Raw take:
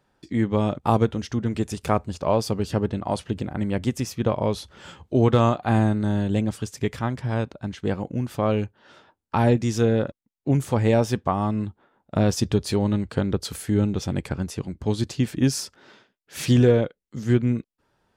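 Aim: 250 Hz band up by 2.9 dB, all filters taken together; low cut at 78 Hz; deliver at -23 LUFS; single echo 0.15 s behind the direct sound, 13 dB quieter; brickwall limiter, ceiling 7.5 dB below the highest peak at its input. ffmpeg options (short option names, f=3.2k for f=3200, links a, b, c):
-af "highpass=78,equalizer=f=250:t=o:g=3.5,alimiter=limit=-11.5dB:level=0:latency=1,aecho=1:1:150:0.224,volume=1.5dB"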